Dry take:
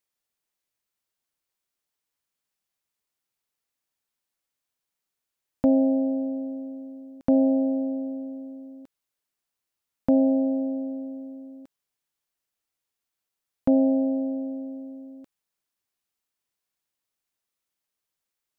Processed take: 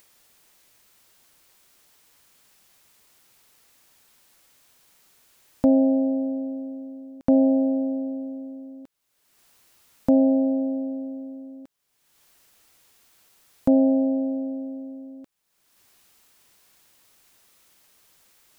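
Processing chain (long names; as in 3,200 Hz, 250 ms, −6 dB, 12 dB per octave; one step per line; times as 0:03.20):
upward compression, threshold −42 dBFS
level +2 dB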